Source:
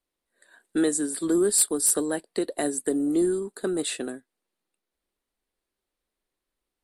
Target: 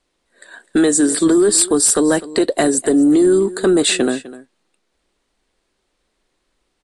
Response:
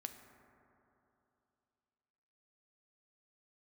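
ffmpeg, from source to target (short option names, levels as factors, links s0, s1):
-filter_complex "[0:a]lowpass=f=8600:w=0.5412,lowpass=f=8600:w=1.3066,acompressor=threshold=0.0562:ratio=3,apsyclip=16.8,asplit=2[s0][s1];[s1]aecho=0:1:253:0.133[s2];[s0][s2]amix=inputs=2:normalize=0,volume=0.398"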